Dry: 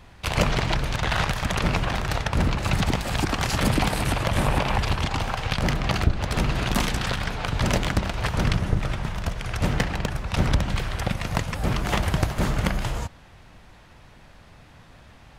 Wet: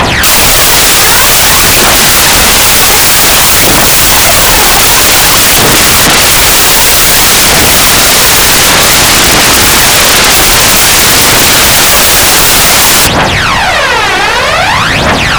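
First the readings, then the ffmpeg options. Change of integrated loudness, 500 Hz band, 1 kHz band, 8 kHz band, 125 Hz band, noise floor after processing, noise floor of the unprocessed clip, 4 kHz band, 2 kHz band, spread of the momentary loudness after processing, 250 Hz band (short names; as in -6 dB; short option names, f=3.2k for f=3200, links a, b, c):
+23.5 dB, +19.5 dB, +21.5 dB, +34.5 dB, +9.0 dB, -8 dBFS, -50 dBFS, +28.0 dB, +24.5 dB, 4 LU, +14.0 dB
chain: -filter_complex "[0:a]aphaser=in_gain=1:out_gain=1:delay=2.7:decay=0.65:speed=0.53:type=triangular,asplit=2[a][b];[b]highpass=f=720:p=1,volume=31dB,asoftclip=type=tanh:threshold=-1dB[c];[a][c]amix=inputs=2:normalize=0,lowpass=f=6.7k:p=1,volume=-6dB,aeval=exprs='0.891*sin(PI/2*8.91*val(0)/0.891)':c=same"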